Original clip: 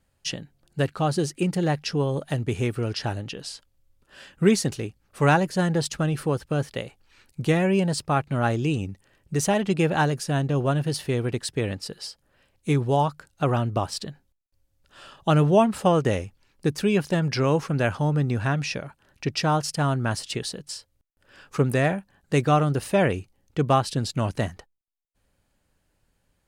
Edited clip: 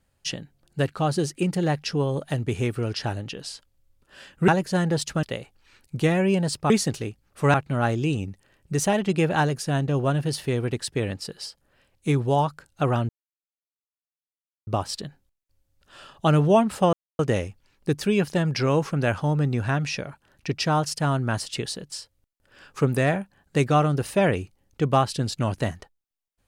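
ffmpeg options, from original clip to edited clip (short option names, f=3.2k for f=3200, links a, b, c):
-filter_complex "[0:a]asplit=7[a][b][c][d][e][f][g];[a]atrim=end=4.482[h];[b]atrim=start=5.318:end=6.072[i];[c]atrim=start=6.678:end=8.152[j];[d]atrim=start=4.478:end=5.322[k];[e]atrim=start=8.148:end=13.7,asetpts=PTS-STARTPTS,afade=t=out:st=5.548:d=0.004:c=hsin,apad=pad_dur=1.58[l];[f]atrim=start=13.7:end=15.96,asetpts=PTS-STARTPTS,afade=t=in:d=0.004:c=hsin,afade=t=out:st=2.256:d=0.004:c=hsin,apad=pad_dur=0.26[m];[g]atrim=start=15.96,asetpts=PTS-STARTPTS,afade=t=in:d=0.004:c=hsin[n];[h][i]acrossfade=d=0.004:c1=hsin:c2=hsin[o];[o][j]acrossfade=d=0.004:c1=hsin:c2=hsin[p];[p][k]acrossfade=d=0.004:c1=hsin:c2=hsin[q];[l][m][n]concat=n=3:v=0:a=1[r];[q][r]acrossfade=d=0.004:c1=hsin:c2=hsin"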